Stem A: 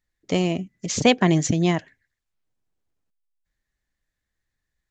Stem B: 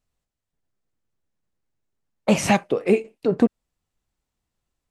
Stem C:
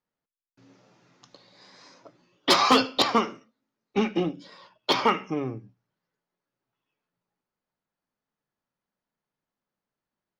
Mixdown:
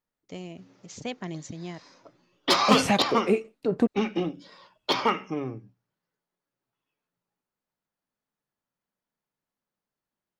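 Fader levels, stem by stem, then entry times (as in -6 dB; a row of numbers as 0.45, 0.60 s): -17.5, -5.0, -2.0 dB; 0.00, 0.40, 0.00 s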